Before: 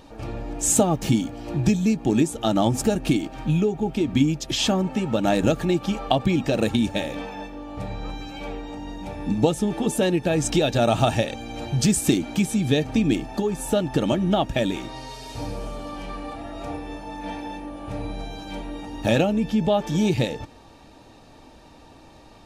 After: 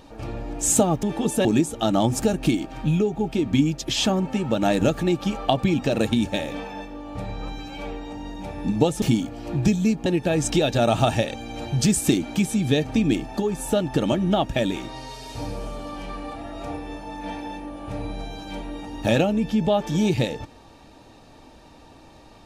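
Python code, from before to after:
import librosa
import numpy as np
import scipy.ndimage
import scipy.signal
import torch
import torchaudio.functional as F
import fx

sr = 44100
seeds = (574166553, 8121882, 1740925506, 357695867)

y = fx.edit(x, sr, fx.swap(start_s=1.03, length_s=1.04, other_s=9.64, other_length_s=0.42), tone=tone)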